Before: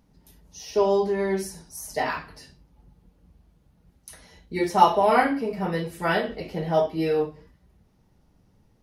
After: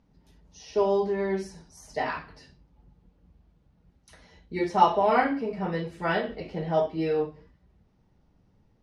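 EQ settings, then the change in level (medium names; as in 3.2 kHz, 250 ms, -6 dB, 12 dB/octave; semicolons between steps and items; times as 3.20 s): distance through air 97 m; -2.5 dB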